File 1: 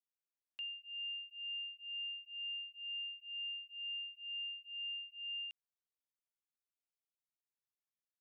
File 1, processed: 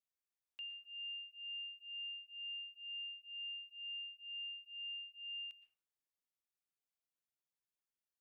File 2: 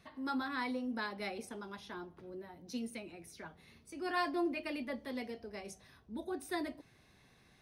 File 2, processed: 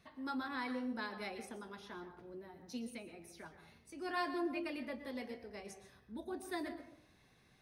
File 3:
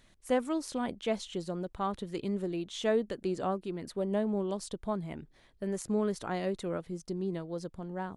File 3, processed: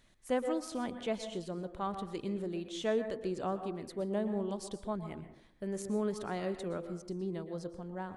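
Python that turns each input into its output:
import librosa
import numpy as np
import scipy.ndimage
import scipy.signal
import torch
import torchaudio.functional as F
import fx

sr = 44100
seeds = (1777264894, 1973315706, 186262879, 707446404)

y = fx.rev_plate(x, sr, seeds[0], rt60_s=0.65, hf_ratio=0.4, predelay_ms=105, drr_db=9.0)
y = F.gain(torch.from_numpy(y), -3.5).numpy()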